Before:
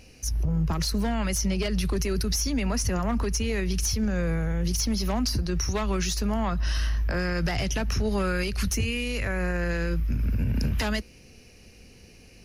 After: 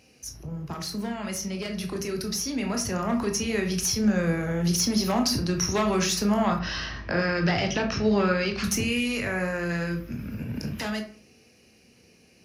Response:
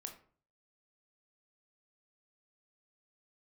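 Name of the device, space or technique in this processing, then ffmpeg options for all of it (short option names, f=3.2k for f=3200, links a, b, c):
far laptop microphone: -filter_complex "[1:a]atrim=start_sample=2205[a];[0:a][a]afir=irnorm=-1:irlink=0,highpass=130,dynaudnorm=f=200:g=31:m=8.5dB,asettb=1/sr,asplit=3[b][c][d];[b]atrim=end=6.594[e];[c]atrim=start=6.59:end=8.64,asetpts=PTS-STARTPTS,afade=t=in:d=0.004:c=qsin,afade=t=out:st=2.046:d=0.004:c=qsin,lowpass=f=5.2k:w=0.5412,lowpass=f=5.2k:w=1.3066[f];[d]atrim=start=8.636[g];[e][f]acrossfade=d=0.004:c1=hsin:c2=qsin[h];[h][g]acrossfade=d=0.004:c1=qsin:c2=hsin"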